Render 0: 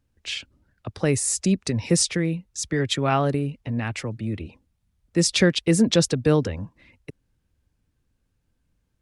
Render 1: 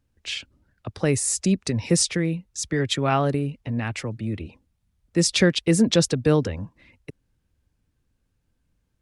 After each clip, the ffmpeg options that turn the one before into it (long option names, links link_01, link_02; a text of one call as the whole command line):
ffmpeg -i in.wav -af anull out.wav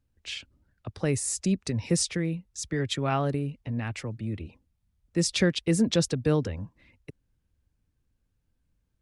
ffmpeg -i in.wav -af "lowshelf=frequency=130:gain=4.5,volume=-6dB" out.wav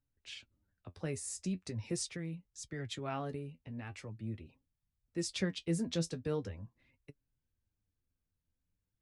ffmpeg -i in.wav -af "flanger=delay=7:depth=5.2:regen=44:speed=0.42:shape=sinusoidal,volume=-7.5dB" out.wav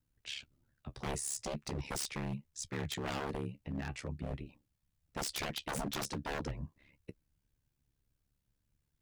ffmpeg -i in.wav -af "aeval=exprs='0.0133*(abs(mod(val(0)/0.0133+3,4)-2)-1)':channel_layout=same,aeval=exprs='val(0)*sin(2*PI*35*n/s)':channel_layout=same,volume=8dB" out.wav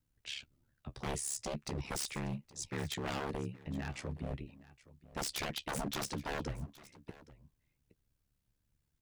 ffmpeg -i in.wav -af "aecho=1:1:819:0.106" out.wav